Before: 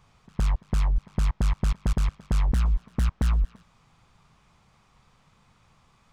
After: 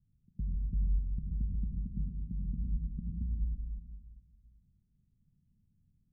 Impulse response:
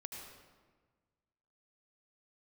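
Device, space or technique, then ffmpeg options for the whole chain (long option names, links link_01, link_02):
club heard from the street: -filter_complex "[0:a]asettb=1/sr,asplit=3[link_01][link_02][link_03];[link_01]atrim=end=1.614[link_04];[link_02]atrim=start=1.61:end=3.16,asetpts=PTS-STARTPTS,afade=type=in:duration=0.004:curve=qsin,afade=type=out:start_time=1.546:duration=0.004:curve=qsin,equalizer=frequency=180:width=0.67:gain=11.5[link_05];[link_03]atrim=start=3.156[link_06];[link_04][link_05]acrossfade=duration=0.004:curve1=hsin:curve2=qsin[link_07];[link_07][link_06]acrossfade=duration=0.004:curve1=qsin:curve2=hsin,alimiter=limit=-18dB:level=0:latency=1:release=451,lowpass=frequency=240:width=0.5412,lowpass=frequency=240:width=1.3066[link_08];[1:a]atrim=start_sample=2205[link_09];[link_08][link_09]afir=irnorm=-1:irlink=0,volume=-6dB"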